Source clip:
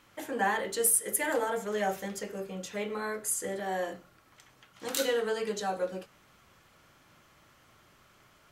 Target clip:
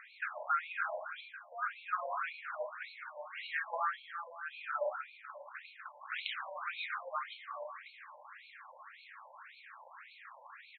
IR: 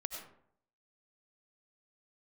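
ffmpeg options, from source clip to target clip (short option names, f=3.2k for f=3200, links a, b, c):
-filter_complex "[0:a]equalizer=f=250:t=o:w=1:g=-11,equalizer=f=500:t=o:w=1:g=-5,equalizer=f=1k:t=o:w=1:g=-10,equalizer=f=4k:t=o:w=1:g=-11,equalizer=f=8k:t=o:w=1:g=5,acompressor=threshold=-47dB:ratio=4,asetrate=34839,aresample=44100,asplit=2[a][b];[b]adelay=246,lowpass=f=3.7k:p=1,volume=-7dB,asplit=2[c][d];[d]adelay=246,lowpass=f=3.7k:p=1,volume=0.4,asplit=2[e][f];[f]adelay=246,lowpass=f=3.7k:p=1,volume=0.4,asplit=2[g][h];[h]adelay=246,lowpass=f=3.7k:p=1,volume=0.4,asplit=2[i][j];[j]adelay=246,lowpass=f=3.7k:p=1,volume=0.4[k];[a][c][e][g][i][k]amix=inputs=6:normalize=0,asplit=2[l][m];[1:a]atrim=start_sample=2205,afade=t=out:st=0.22:d=0.01,atrim=end_sample=10143,asetrate=38367,aresample=44100[n];[m][n]afir=irnorm=-1:irlink=0,volume=1dB[o];[l][o]amix=inputs=2:normalize=0,afftfilt=real='re*between(b*sr/1024,710*pow(3100/710,0.5+0.5*sin(2*PI*1.8*pts/sr))/1.41,710*pow(3100/710,0.5+0.5*sin(2*PI*1.8*pts/sr))*1.41)':imag='im*between(b*sr/1024,710*pow(3100/710,0.5+0.5*sin(2*PI*1.8*pts/sr))/1.41,710*pow(3100/710,0.5+0.5*sin(2*PI*1.8*pts/sr))*1.41)':win_size=1024:overlap=0.75,volume=14dB"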